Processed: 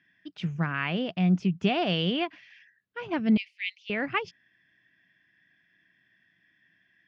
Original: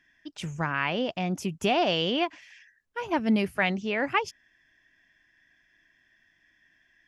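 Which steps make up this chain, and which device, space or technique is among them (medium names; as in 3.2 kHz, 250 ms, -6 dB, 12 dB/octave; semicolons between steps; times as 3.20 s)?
guitar cabinet (cabinet simulation 100–4400 Hz, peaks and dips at 120 Hz +6 dB, 180 Hz +10 dB, 560 Hz -4 dB, 910 Hz -7 dB); 3.37–3.90 s: steep high-pass 2.1 kHz 72 dB/octave; trim -1.5 dB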